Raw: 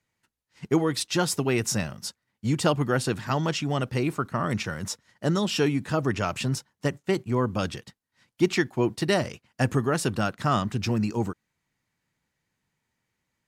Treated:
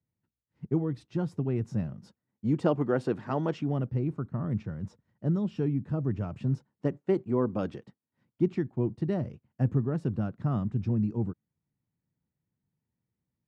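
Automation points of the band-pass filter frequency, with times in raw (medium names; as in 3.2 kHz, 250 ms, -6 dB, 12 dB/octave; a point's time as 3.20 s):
band-pass filter, Q 0.74
1.64 s 120 Hz
2.82 s 380 Hz
3.51 s 380 Hz
3.93 s 120 Hz
6.30 s 120 Hz
7.01 s 330 Hz
7.75 s 330 Hz
8.59 s 130 Hz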